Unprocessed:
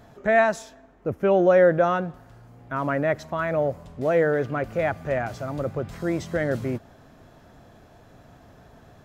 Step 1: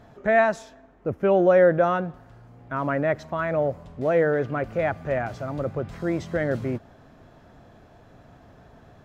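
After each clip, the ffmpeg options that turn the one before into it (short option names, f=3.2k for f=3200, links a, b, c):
-af "highshelf=f=6.4k:g=-10.5"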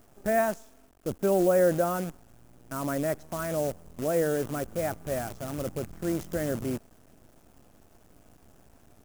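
-af "acrusher=bits=6:dc=4:mix=0:aa=0.000001,equalizer=f=125:t=o:w=1:g=-6,equalizer=f=500:t=o:w=1:g=-4,equalizer=f=1k:t=o:w=1:g=-6,equalizer=f=2k:t=o:w=1:g=-8,equalizer=f=4k:t=o:w=1:g=-10"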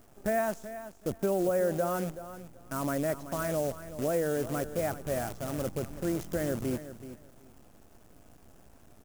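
-af "acompressor=threshold=-26dB:ratio=3,aecho=1:1:379|758:0.224|0.0403"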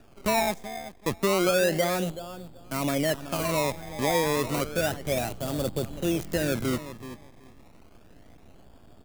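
-filter_complex "[0:a]acrossover=split=140|1600|2700[a][b][c][d];[b]acrusher=samples=21:mix=1:aa=0.000001:lfo=1:lforange=21:lforate=0.31[e];[d]aeval=exprs='sgn(val(0))*max(abs(val(0))-0.002,0)':c=same[f];[a][e][c][f]amix=inputs=4:normalize=0,volume=4.5dB"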